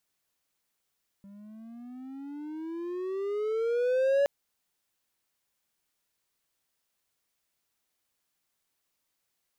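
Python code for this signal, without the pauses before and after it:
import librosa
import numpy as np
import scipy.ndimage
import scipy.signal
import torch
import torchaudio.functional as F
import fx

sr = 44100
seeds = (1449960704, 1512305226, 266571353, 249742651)

y = fx.riser_tone(sr, length_s=3.02, level_db=-18.5, wave='triangle', hz=196.0, rise_st=18.5, swell_db=26)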